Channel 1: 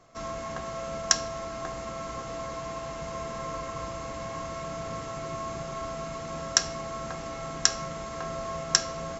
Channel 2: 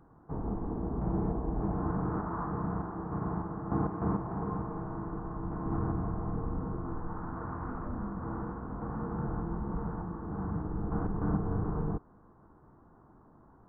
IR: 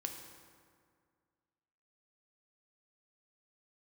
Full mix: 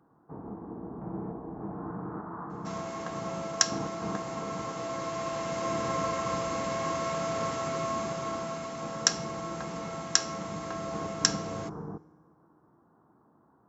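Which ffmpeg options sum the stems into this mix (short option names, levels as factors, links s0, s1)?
-filter_complex "[0:a]dynaudnorm=f=490:g=5:m=2.24,adelay=2500,volume=0.708,asplit=2[s0][s1];[s1]volume=0.126[s2];[1:a]volume=0.562,asplit=2[s3][s4];[s4]volume=0.211[s5];[2:a]atrim=start_sample=2205[s6];[s2][s5]amix=inputs=2:normalize=0[s7];[s7][s6]afir=irnorm=-1:irlink=0[s8];[s0][s3][s8]amix=inputs=3:normalize=0,highpass=150"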